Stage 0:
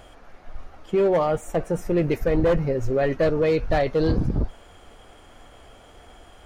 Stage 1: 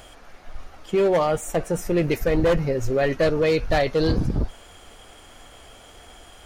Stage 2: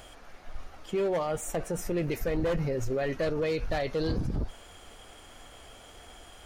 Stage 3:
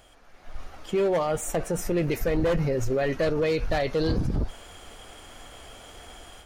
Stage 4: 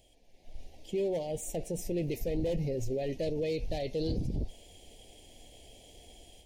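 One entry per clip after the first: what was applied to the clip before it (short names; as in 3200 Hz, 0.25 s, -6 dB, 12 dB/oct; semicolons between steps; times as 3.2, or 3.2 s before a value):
high shelf 2400 Hz +9.5 dB
limiter -19.5 dBFS, peak gain reduction 7.5 dB; gain -3.5 dB
AGC gain up to 11 dB; gain -6.5 dB
Butterworth band-stop 1300 Hz, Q 0.67; gain -7 dB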